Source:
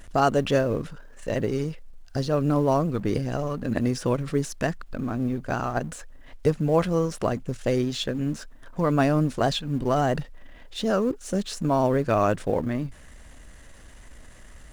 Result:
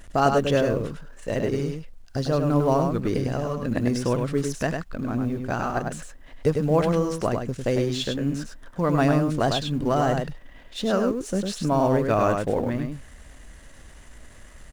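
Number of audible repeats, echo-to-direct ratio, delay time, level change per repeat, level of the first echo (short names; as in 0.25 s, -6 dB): 1, -5.0 dB, 0.101 s, no steady repeat, -5.0 dB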